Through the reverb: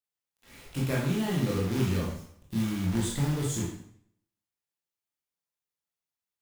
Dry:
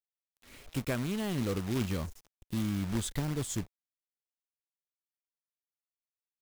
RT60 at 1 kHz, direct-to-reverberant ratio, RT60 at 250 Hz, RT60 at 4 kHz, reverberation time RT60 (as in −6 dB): 0.65 s, −4.5 dB, 0.65 s, 0.60 s, 0.65 s